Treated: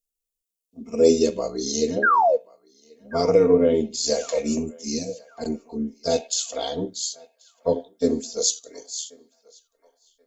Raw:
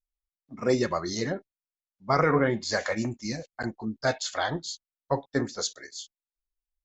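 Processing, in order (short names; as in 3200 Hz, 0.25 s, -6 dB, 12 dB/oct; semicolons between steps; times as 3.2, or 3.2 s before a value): EQ curve 100 Hz 0 dB, 500 Hz +12 dB, 840 Hz -3 dB, 1800 Hz -15 dB, 2600 Hz +7 dB, 4200 Hz +6 dB, 7100 Hz +14 dB; painted sound fall, 1.35–1.58, 470–1700 Hz -14 dBFS; resonator 77 Hz, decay 0.19 s, harmonics all, mix 30%; granular stretch 1.5×, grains 26 ms; narrowing echo 1.083 s, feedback 41%, band-pass 1400 Hz, level -21 dB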